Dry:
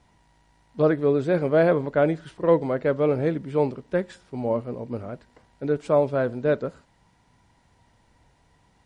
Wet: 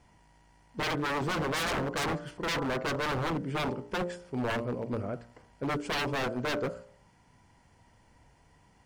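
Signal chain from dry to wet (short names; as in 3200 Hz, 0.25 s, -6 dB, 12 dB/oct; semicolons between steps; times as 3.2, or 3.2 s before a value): 0.96–3.21 self-modulated delay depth 0.31 ms; notch 3800 Hz, Q 5.1; de-hum 58.75 Hz, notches 26; wavefolder -25.5 dBFS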